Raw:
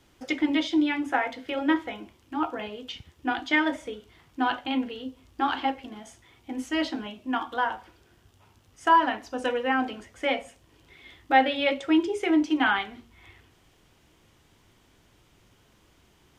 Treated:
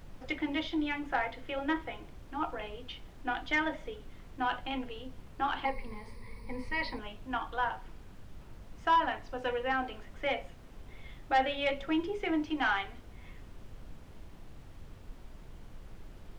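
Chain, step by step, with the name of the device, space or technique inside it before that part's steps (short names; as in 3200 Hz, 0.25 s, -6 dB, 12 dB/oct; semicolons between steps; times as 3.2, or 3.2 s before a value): aircraft cabin announcement (BPF 360–3600 Hz; soft clip -14 dBFS, distortion -17 dB; brown noise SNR 10 dB); 5.65–6.99 ripple EQ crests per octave 0.91, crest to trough 17 dB; gain -4.5 dB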